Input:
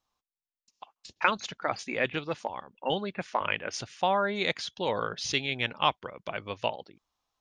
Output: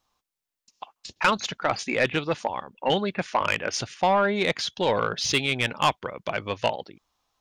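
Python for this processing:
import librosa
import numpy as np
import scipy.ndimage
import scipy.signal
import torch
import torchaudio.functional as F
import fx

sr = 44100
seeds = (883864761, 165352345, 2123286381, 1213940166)

y = fx.high_shelf(x, sr, hz=2900.0, db=-7.0, at=(3.94, 4.59))
y = 10.0 ** (-20.0 / 20.0) * np.tanh(y / 10.0 ** (-20.0 / 20.0))
y = y * 10.0 ** (7.5 / 20.0)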